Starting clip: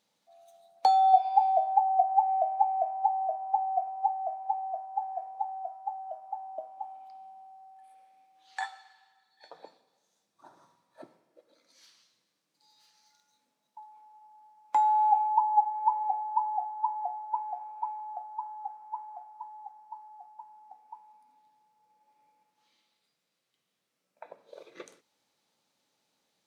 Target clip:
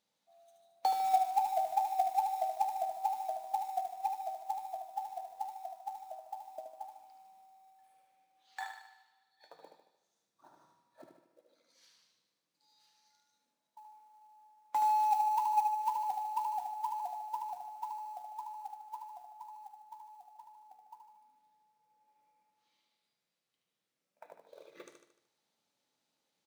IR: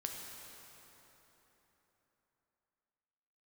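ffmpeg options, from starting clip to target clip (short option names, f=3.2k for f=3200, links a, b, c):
-filter_complex "[0:a]aeval=exprs='0.299*(cos(1*acos(clip(val(0)/0.299,-1,1)))-cos(1*PI/2))+0.0075*(cos(5*acos(clip(val(0)/0.299,-1,1)))-cos(5*PI/2))':c=same,asettb=1/sr,asplit=3[a][b][c];[a]atrim=end=1.114[d];[b]atrim=start=1.11:end=2.49,asetpts=PTS-STARTPTS,afade=t=in:d=0.004:c=qsin,afade=t=out:st=1.376:d=0.004:c=qsin,bass=f=250:g=-6,treble=f=4k:g=-1[e];[c]atrim=start=2.486[f];[d][e]acrossfade=d=0.004:c1=hsin:c2=qsin[g];[g][f]acrossfade=d=0.004:c1=qsin:c2=hsin,acrusher=bits=5:mode=log:mix=0:aa=0.000001,aecho=1:1:75|150|225|300|375|450:0.501|0.251|0.125|0.0626|0.0313|0.0157,volume=-8dB"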